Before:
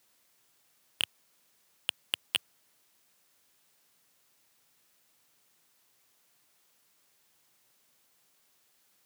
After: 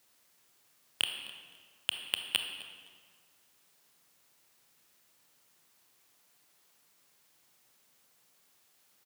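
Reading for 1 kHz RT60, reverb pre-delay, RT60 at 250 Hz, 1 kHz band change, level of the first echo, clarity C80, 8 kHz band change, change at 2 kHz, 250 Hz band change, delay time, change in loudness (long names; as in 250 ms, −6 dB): 1.8 s, 24 ms, 1.7 s, +1.5 dB, −18.5 dB, 7.0 dB, +1.0 dB, +1.0 dB, +1.5 dB, 258 ms, −0.5 dB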